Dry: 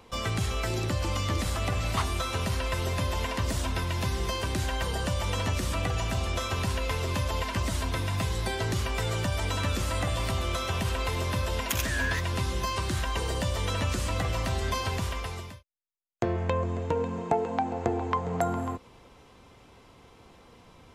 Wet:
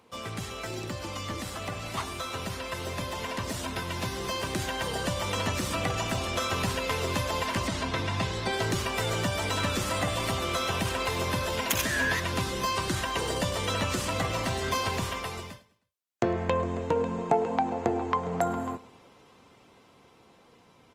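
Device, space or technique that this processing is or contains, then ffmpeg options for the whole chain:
video call: -filter_complex "[0:a]asettb=1/sr,asplit=3[link_01][link_02][link_03];[link_01]atrim=end=7.674[link_04];[link_02]atrim=start=7.67:end=8.53,asetpts=PTS-STARTPTS,afade=type=in:duration=0.004:curve=qsin,afade=type=out:start_time=0.856:duration=0.004:curve=qsin,lowpass=6000[link_05];[link_03]atrim=start=8.526[link_06];[link_04][link_05]acrossfade=duration=0.004:curve1=hsin:curve2=qsin[link_07];[link_07][link_06]acrossfade=duration=0.004:curve1=qsin:curve2=hsin,highpass=130,aecho=1:1:104|208|312:0.112|0.0471|0.0198,dynaudnorm=framelen=920:gausssize=9:maxgain=7dB,volume=-4dB" -ar 48000 -c:a libopus -b:a 24k

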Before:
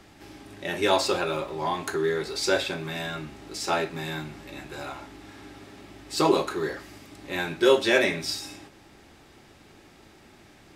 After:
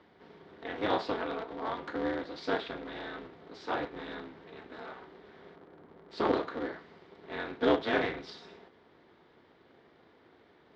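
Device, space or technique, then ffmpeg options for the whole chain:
ring modulator pedal into a guitar cabinet: -filter_complex "[0:a]asplit=3[link_01][link_02][link_03];[link_01]afade=type=out:start_time=5.55:duration=0.02[link_04];[link_02]lowpass=1300,afade=type=in:start_time=5.55:duration=0.02,afade=type=out:start_time=6.1:duration=0.02[link_05];[link_03]afade=type=in:start_time=6.1:duration=0.02[link_06];[link_04][link_05][link_06]amix=inputs=3:normalize=0,aeval=exprs='val(0)*sgn(sin(2*PI*110*n/s))':channel_layout=same,highpass=100,equalizer=frequency=120:width_type=q:width=4:gain=-5,equalizer=frequency=200:width_type=q:width=4:gain=-6,equalizer=frequency=360:width_type=q:width=4:gain=6,equalizer=frequency=2600:width_type=q:width=4:gain=-9,lowpass=frequency=3600:width=0.5412,lowpass=frequency=3600:width=1.3066,volume=-7.5dB"

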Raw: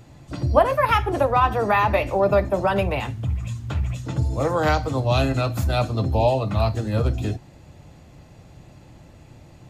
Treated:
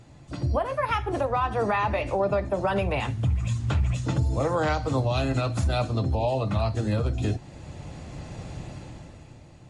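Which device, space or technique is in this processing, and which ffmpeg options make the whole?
low-bitrate web radio: -af "dynaudnorm=framelen=120:gausssize=17:maxgain=15dB,alimiter=limit=-12.5dB:level=0:latency=1:release=383,volume=-3dB" -ar 32000 -c:a libmp3lame -b:a 48k

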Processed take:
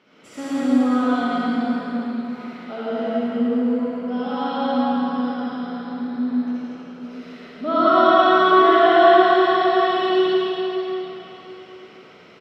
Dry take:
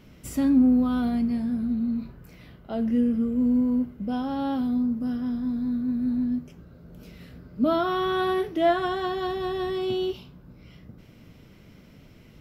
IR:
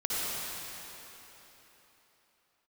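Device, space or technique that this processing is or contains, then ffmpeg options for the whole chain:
station announcement: -filter_complex "[0:a]highpass=410,lowpass=4300,equalizer=frequency=1300:width_type=o:width=0.22:gain=5,aecho=1:1:110.8|166.2|236.2:0.708|0.631|0.316[link_01];[1:a]atrim=start_sample=2205[link_02];[link_01][link_02]afir=irnorm=-1:irlink=0"

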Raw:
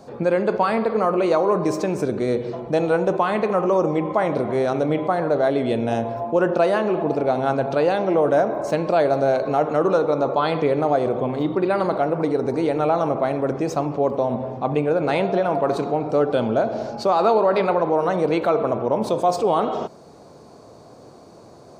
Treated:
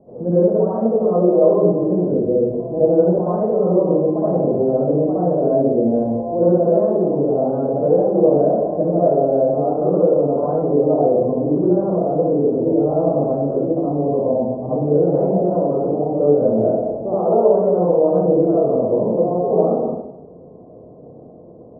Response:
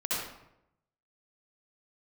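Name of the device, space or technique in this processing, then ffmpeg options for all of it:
next room: -filter_complex "[0:a]lowpass=frequency=630:width=0.5412,lowpass=frequency=630:width=1.3066[link_01];[1:a]atrim=start_sample=2205[link_02];[link_01][link_02]afir=irnorm=-1:irlink=0,volume=-2dB"

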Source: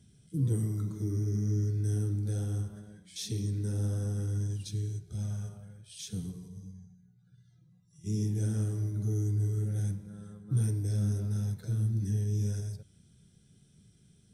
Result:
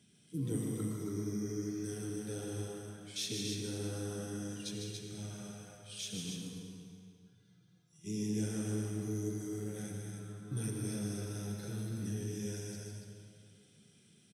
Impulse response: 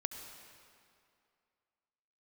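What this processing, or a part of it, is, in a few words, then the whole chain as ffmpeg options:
stadium PA: -filter_complex "[0:a]highpass=210,equalizer=frequency=2600:width_type=o:width=0.86:gain=6.5,aecho=1:1:151.6|198.3|282.8:0.501|0.251|0.562[link_01];[1:a]atrim=start_sample=2205[link_02];[link_01][link_02]afir=irnorm=-1:irlink=0"

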